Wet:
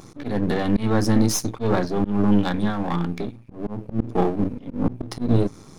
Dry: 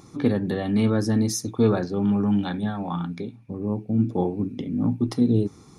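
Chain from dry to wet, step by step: partial rectifier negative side -12 dB; slow attack 169 ms; trim +7.5 dB

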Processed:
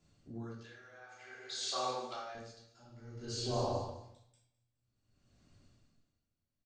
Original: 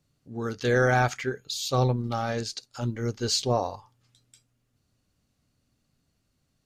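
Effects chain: 0.60–2.35 s: high-pass 810 Hz 12 dB/octave; compression 3:1, threshold -40 dBFS, peak gain reduction 15 dB; brick-wall FIR low-pass 8.9 kHz; feedback delay 209 ms, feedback 37%, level -14 dB; simulated room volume 470 m³, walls mixed, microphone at 3.1 m; logarithmic tremolo 0.54 Hz, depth 24 dB; trim -2.5 dB

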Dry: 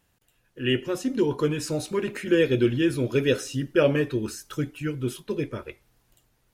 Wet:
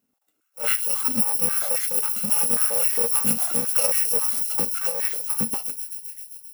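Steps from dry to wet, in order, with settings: bit-reversed sample order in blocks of 128 samples; on a send: feedback echo behind a high-pass 132 ms, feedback 79%, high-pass 4.4 kHz, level -6 dB; on the sum: spectral noise reduction 9 dB; treble shelf 8.9 kHz +8 dB; compression, threshold -13 dBFS, peak gain reduction 5.5 dB; tilt shelf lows +5 dB, about 1.5 kHz; step-sequenced high-pass 7.4 Hz 230–1900 Hz; trim +1 dB

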